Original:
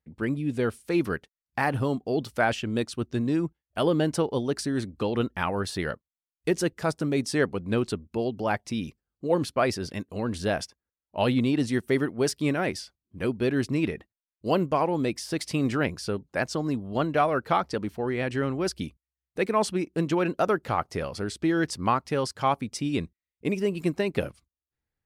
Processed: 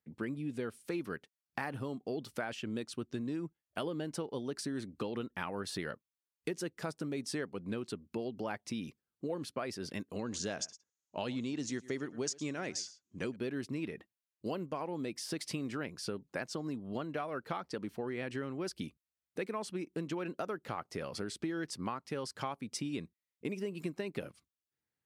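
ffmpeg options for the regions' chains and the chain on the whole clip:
-filter_complex "[0:a]asettb=1/sr,asplit=3[s0][s1][s2];[s0]atrim=end=10.194[s3];[s1]atrim=start=10.19:end=13.36,asetpts=PTS-STARTPTS,afade=t=in:d=0.004:c=qsin,afade=t=out:st=3.166:d=0.004:c=qsin,lowpass=f=6700:t=q:w=6.8,aecho=1:1:110:0.0841,atrim=end_sample=139797[s4];[s2]atrim=start=13.356[s5];[s3][s4]acrossfade=d=0.004:c1=hsin:c2=qsin[s6];[s6][s5]acrossfade=d=0.004:c1=qsin:c2=hsin,acompressor=threshold=0.0251:ratio=6,highpass=140,equalizer=f=720:w=1.5:g=-2.5,volume=0.794"

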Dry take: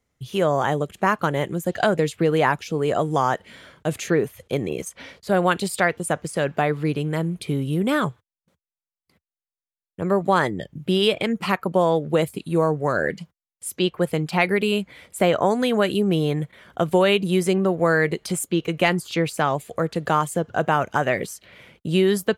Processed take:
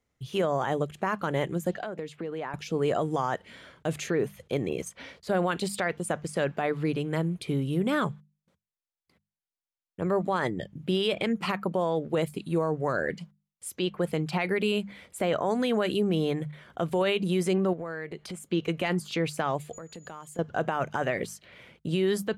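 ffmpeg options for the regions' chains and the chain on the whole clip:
-filter_complex "[0:a]asettb=1/sr,asplit=3[s0][s1][s2];[s0]atrim=end=1.744[s3];[s1]atrim=start=1.74:end=2.54,asetpts=PTS-STARTPTS,afade=t=in:d=0.004:c=qsin,afade=t=out:st=0.796:d=0.004:c=qsin,highpass=170,highshelf=f=4400:g=-10,acompressor=threshold=0.0282:ratio=3:attack=3.2:release=140:knee=1:detection=peak[s4];[s2]atrim=start=2.536[s5];[s3][s4]acrossfade=d=0.004:c1=hsin:c2=qsin[s6];[s6][s5]acrossfade=d=0.004:c1=qsin:c2=hsin,asettb=1/sr,asplit=3[s7][s8][s9];[s7]atrim=end=17.734[s10];[s8]atrim=start=17.73:end=18.51,asetpts=PTS-STARTPTS,afade=t=in:d=0.004:c=qsin,afade=t=out:st=0.776:d=0.004:c=qsin,acompressor=threshold=0.0355:ratio=6:attack=3.2:release=140:knee=1:detection=peak,bass=f=250:g=-1,treble=f=4000:g=-5[s11];[s9]atrim=start=18.506[s12];[s10][s11]acrossfade=d=0.004:c1=hsin:c2=qsin[s13];[s13][s12]acrossfade=d=0.004:c1=qsin:c2=hsin,asettb=1/sr,asplit=3[s14][s15][s16];[s14]atrim=end=19.734[s17];[s15]atrim=start=19.73:end=20.39,asetpts=PTS-STARTPTS,afade=t=in:d=0.004:c=qsin,afade=t=out:st=0.656:d=0.004:c=qsin,highshelf=f=5400:g=5,aeval=exprs='val(0)+0.01*sin(2*PI*6900*n/s)':c=same,acompressor=threshold=0.0141:ratio=5:attack=3.2:release=140:knee=1:detection=peak[s18];[s16]atrim=start=20.386[s19];[s17][s18]acrossfade=d=0.004:c1=hsin:c2=qsin[s20];[s20][s19]acrossfade=d=0.004:c1=qsin:c2=hsin,highshelf=f=11000:g=-9,bandreject=f=50:t=h:w=6,bandreject=f=100:t=h:w=6,bandreject=f=150:t=h:w=6,bandreject=f=200:t=h:w=6,alimiter=limit=0.2:level=0:latency=1:release=21,volume=0.668"

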